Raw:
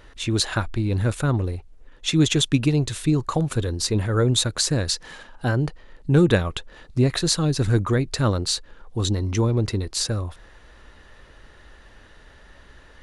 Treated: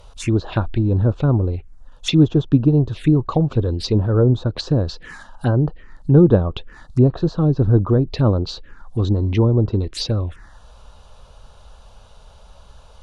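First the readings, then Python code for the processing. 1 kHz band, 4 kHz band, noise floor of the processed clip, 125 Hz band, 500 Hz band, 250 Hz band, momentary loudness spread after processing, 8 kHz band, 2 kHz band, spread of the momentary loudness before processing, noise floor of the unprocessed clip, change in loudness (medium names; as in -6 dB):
+0.5 dB, -5.0 dB, -46 dBFS, +5.5 dB, +5.0 dB, +5.5 dB, 11 LU, under -10 dB, -6.0 dB, 10 LU, -50 dBFS, +4.0 dB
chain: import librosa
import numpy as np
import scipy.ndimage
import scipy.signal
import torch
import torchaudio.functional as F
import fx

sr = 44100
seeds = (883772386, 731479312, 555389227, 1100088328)

y = fx.env_phaser(x, sr, low_hz=280.0, high_hz=2100.0, full_db=-20.0)
y = fx.env_lowpass_down(y, sr, base_hz=1100.0, full_db=-18.0)
y = y * librosa.db_to_amplitude(5.5)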